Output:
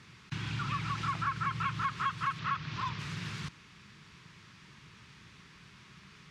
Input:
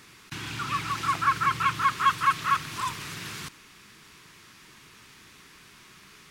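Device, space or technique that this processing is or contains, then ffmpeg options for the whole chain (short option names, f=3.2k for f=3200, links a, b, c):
jukebox: -filter_complex "[0:a]lowpass=5.3k,lowshelf=f=220:t=q:w=1.5:g=7,acompressor=threshold=-26dB:ratio=4,highpass=54,bandreject=f=710:w=22,asettb=1/sr,asplit=3[a][b][c];[a]atrim=end=2.394[d];[b]atrim=start=2.39:end=2.99,asetpts=PTS-STARTPTS,afade=t=in:d=0.004:c=qsin,afade=t=out:st=0.596:d=0.004:c=qsin,lowpass=f=5.7k:w=0.5412,lowpass=f=5.7k:w=1.3066[e];[c]atrim=start=2.986[f];[d][e]acrossfade=d=0.004:c1=hsin:c2=qsin[g];[g][f]acrossfade=d=0.004:c1=qsin:c2=hsin,volume=-4dB"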